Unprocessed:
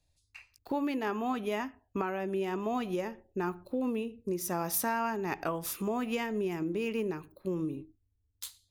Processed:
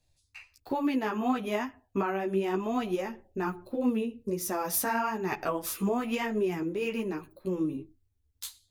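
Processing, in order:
multi-voice chorus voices 4, 1 Hz, delay 12 ms, depth 4.2 ms
level +5.5 dB

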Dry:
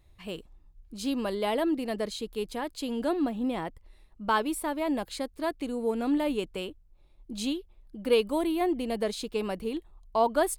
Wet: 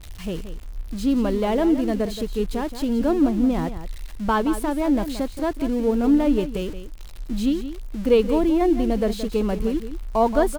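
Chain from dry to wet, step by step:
spike at every zero crossing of −25.5 dBFS
RIAA equalisation playback
on a send: single-tap delay 175 ms −11.5 dB
on the sum: level +3.5 dB

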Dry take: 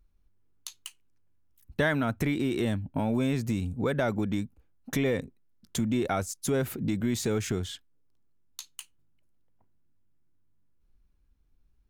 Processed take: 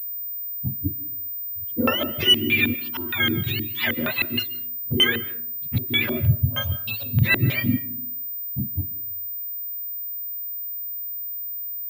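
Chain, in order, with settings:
frequency axis turned over on the octave scale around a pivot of 920 Hz
parametric band 430 Hz −6 dB 0.3 octaves
harmonic and percussive parts rebalanced harmonic +8 dB
0:02.88–0:03.47: parametric band 3,200 Hz −7 dB 0.64 octaves
in parallel at 0 dB: downward compressor, threshold −32 dBFS, peak gain reduction 16.5 dB
0:06.41–0:07.22: on the sum: phaser with its sweep stopped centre 840 Hz, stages 4
auto-filter low-pass square 3.2 Hz 310–2,800 Hz
0:04.39–0:04.92: hard clipping −26 dBFS, distortion −25 dB
on a send at −16 dB: convolution reverb RT60 0.60 s, pre-delay 105 ms
on the sum: switching amplifier with a slow clock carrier 15,000 Hz

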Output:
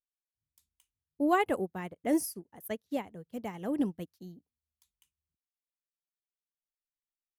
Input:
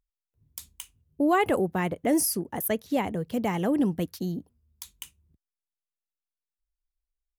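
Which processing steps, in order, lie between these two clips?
expander for the loud parts 2.5 to 1, over −37 dBFS
level −2 dB

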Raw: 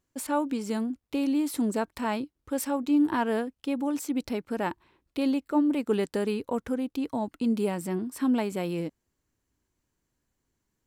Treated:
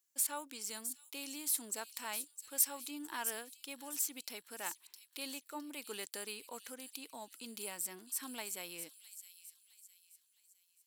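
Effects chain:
first difference
on a send: delay with a high-pass on its return 661 ms, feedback 40%, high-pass 4,300 Hz, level −8 dB
on the sum: level +3.5 dB

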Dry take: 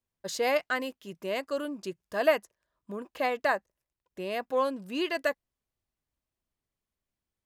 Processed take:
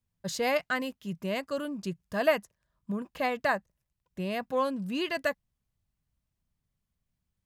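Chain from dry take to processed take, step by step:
low shelf with overshoot 240 Hz +9.5 dB, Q 1.5

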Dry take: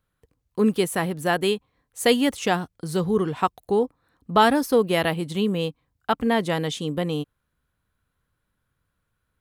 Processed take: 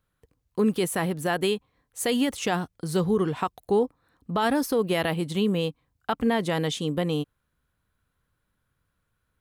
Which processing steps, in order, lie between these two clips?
brickwall limiter −14.5 dBFS, peak gain reduction 10 dB

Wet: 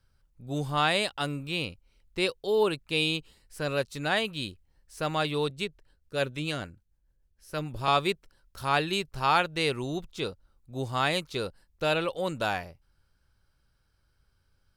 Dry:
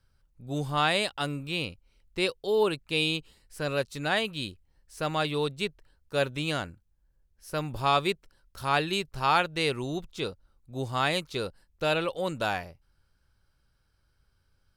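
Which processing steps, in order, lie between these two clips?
0:05.50–0:07.88: rotating-speaker cabinet horn 6.7 Hz

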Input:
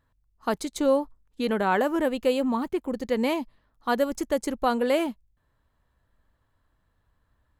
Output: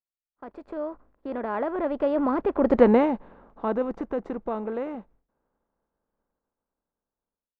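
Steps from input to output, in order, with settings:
compressor on every frequency bin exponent 0.6
source passing by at 0:02.79, 35 m/s, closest 5.3 metres
automatic gain control gain up to 12 dB
low-pass filter 1,300 Hz 12 dB per octave
downward expander −53 dBFS

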